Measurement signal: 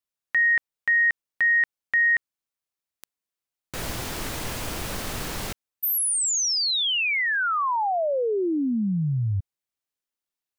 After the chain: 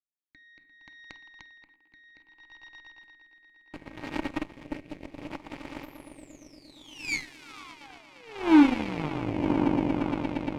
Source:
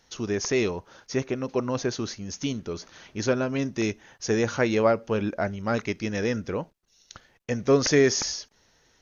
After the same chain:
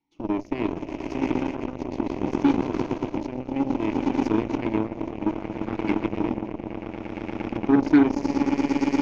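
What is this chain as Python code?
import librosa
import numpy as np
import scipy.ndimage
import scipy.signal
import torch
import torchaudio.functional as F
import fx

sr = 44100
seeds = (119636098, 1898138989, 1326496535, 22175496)

p1 = fx.low_shelf(x, sr, hz=180.0, db=11.5)
p2 = p1 + fx.echo_swell(p1, sr, ms=116, loudest=8, wet_db=-12.5, dry=0)
p3 = fx.room_shoebox(p2, sr, seeds[0], volume_m3=500.0, walls='furnished', distance_m=0.59)
p4 = fx.over_compress(p3, sr, threshold_db=-25.0, ratio=-0.5)
p5 = p3 + (p4 * 10.0 ** (1.0 / 20.0))
p6 = fx.vowel_filter(p5, sr, vowel='u')
p7 = fx.rotary(p6, sr, hz=0.65)
p8 = fx.cheby_harmonics(p7, sr, harmonics=(7, 8), levels_db=(-18, -26), full_scale_db=-15.0)
y = p8 * 10.0 ** (7.5 / 20.0)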